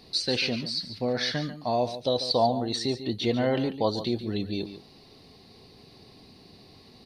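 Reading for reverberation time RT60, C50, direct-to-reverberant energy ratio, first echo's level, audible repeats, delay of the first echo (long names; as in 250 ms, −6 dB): no reverb audible, no reverb audible, no reverb audible, −12.0 dB, 1, 143 ms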